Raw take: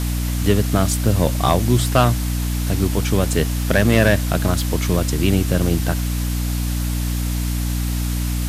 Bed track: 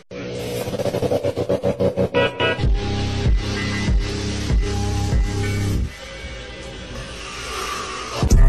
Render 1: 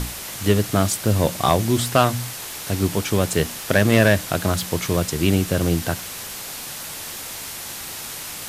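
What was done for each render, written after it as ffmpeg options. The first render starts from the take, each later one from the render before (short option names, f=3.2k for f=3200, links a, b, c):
-af "bandreject=f=60:t=h:w=6,bandreject=f=120:t=h:w=6,bandreject=f=180:t=h:w=6,bandreject=f=240:t=h:w=6,bandreject=f=300:t=h:w=6"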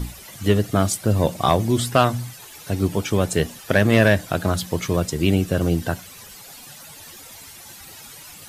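-af "afftdn=nr=13:nf=-33"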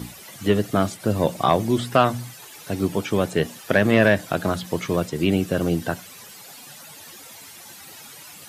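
-filter_complex "[0:a]highpass=140,acrossover=split=3500[a][b];[b]acompressor=threshold=-38dB:ratio=4:attack=1:release=60[c];[a][c]amix=inputs=2:normalize=0"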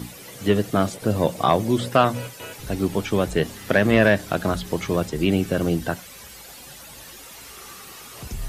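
-filter_complex "[1:a]volume=-19dB[a];[0:a][a]amix=inputs=2:normalize=0"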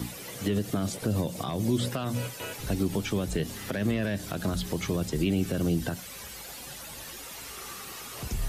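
-filter_complex "[0:a]alimiter=limit=-14.5dB:level=0:latency=1:release=89,acrossover=split=320|3000[a][b][c];[b]acompressor=threshold=-34dB:ratio=6[d];[a][d][c]amix=inputs=3:normalize=0"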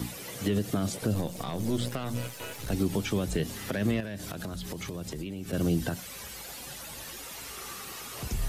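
-filter_complex "[0:a]asettb=1/sr,asplit=3[a][b][c];[a]atrim=end=1.144[d];[b]atrim=start=1.14:end=2.73,asetpts=PTS-STARTPTS,afade=t=in:d=0.004:c=qsin,afade=t=out:st=1.586:d=0.004:c=qsin,aeval=exprs='if(lt(val(0),0),0.447*val(0),val(0))':c=same[e];[c]atrim=start=2.726[f];[d][e]acrossfade=d=0.004:c1=hsin:c2=qsin[g];[g][f]acrossfade=d=0.004:c1=qsin:c2=hsin,asettb=1/sr,asplit=3[h][i][j];[h]atrim=end=4.004[k];[i]atrim=start=4:end=5.53,asetpts=PTS-STARTPTS,afade=t=in:d=0.004:c=qsin,afade=t=out:st=1.526:d=0.004:c=qsin,acompressor=threshold=-33dB:ratio=6:attack=3.2:release=140:knee=1:detection=peak[l];[j]atrim=start=5.526[m];[k][l]acrossfade=d=0.004:c1=hsin:c2=qsin[n];[n][m]acrossfade=d=0.004:c1=qsin:c2=hsin"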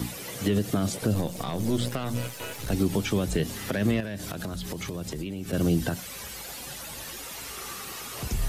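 -af "volume=3dB"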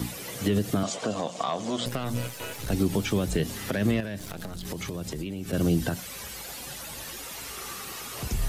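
-filter_complex "[0:a]asettb=1/sr,asplit=3[a][b][c];[a]atrim=end=0.834[d];[b]atrim=start=0.83:end=1.86,asetpts=PTS-STARTPTS,afade=t=in:d=0.004:c=qsin,afade=t=out:st=1.026:d=0.004:c=qsin,highpass=260,equalizer=f=350:t=q:w=4:g=-5,equalizer=f=680:t=q:w=4:g=8,equalizer=f=1.1k:t=q:w=4:g=9,equalizer=f=3.1k:t=q:w=4:g=5,equalizer=f=7k:t=q:w=4:g=5,lowpass=f=7.5k:w=0.5412,lowpass=f=7.5k:w=1.3066[e];[c]atrim=start=1.856[f];[d][e]acrossfade=d=0.004:c1=hsin:c2=qsin[g];[g][f]acrossfade=d=0.004:c1=qsin:c2=hsin,asettb=1/sr,asplit=3[h][i][j];[h]atrim=end=2.984[k];[i]atrim=start=2.98:end=3.39,asetpts=PTS-STARTPTS,afade=t=in:d=0.004:c=qsin,afade=t=out:st=0.406:d=0.004:c=qsin,aeval=exprs='val(0)*gte(abs(val(0)),0.00398)':c=same[l];[j]atrim=start=3.386[m];[k][l]acrossfade=d=0.004:c1=hsin:c2=qsin[n];[n][m]acrossfade=d=0.004:c1=qsin:c2=hsin,asettb=1/sr,asplit=3[o][p][q];[o]atrim=end=4.194[r];[p]atrim=start=4.19:end=4.65,asetpts=PTS-STARTPTS,afade=t=in:d=0.004:c=qsin,afade=t=out:st=0.456:d=0.004:c=qsin,aeval=exprs='if(lt(val(0),0),0.251*val(0),val(0))':c=same[s];[q]atrim=start=4.646[t];[r][s]acrossfade=d=0.004:c1=hsin:c2=qsin[u];[u][t]acrossfade=d=0.004:c1=qsin:c2=hsin"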